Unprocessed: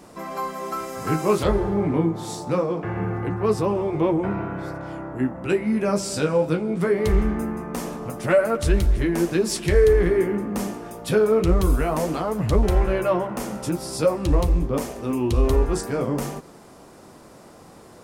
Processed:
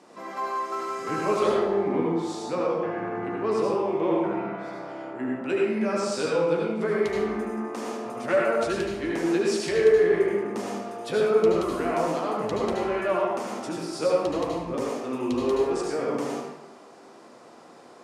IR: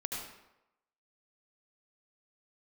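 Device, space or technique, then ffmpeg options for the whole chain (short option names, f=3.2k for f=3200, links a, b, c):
supermarket ceiling speaker: -filter_complex "[0:a]highpass=280,lowpass=6.8k[a];[1:a]atrim=start_sample=2205[b];[a][b]afir=irnorm=-1:irlink=0,volume=-3dB"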